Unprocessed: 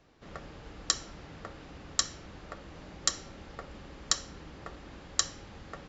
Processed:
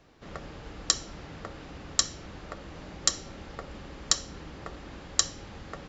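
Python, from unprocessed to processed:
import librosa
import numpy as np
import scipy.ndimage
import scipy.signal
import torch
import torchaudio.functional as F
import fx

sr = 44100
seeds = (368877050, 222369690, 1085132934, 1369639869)

y = fx.dynamic_eq(x, sr, hz=1500.0, q=0.83, threshold_db=-46.0, ratio=4.0, max_db=-4)
y = F.gain(torch.from_numpy(y), 4.0).numpy()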